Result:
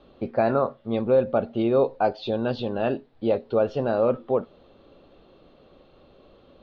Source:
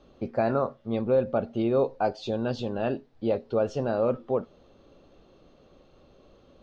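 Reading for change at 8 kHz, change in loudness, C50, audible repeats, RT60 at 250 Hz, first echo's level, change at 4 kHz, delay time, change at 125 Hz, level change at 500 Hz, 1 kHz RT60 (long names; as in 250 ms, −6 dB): can't be measured, +3.5 dB, no reverb audible, no echo audible, no reverb audible, no echo audible, +3.5 dB, no echo audible, +1.0 dB, +3.5 dB, no reverb audible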